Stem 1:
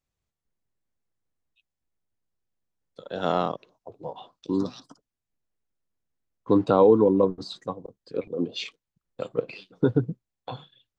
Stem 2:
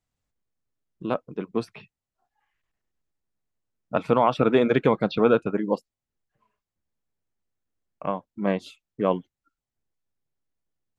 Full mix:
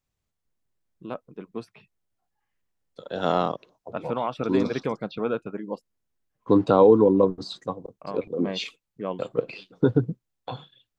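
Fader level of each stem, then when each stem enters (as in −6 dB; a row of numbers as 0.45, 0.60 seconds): +1.5, −8.0 decibels; 0.00, 0.00 seconds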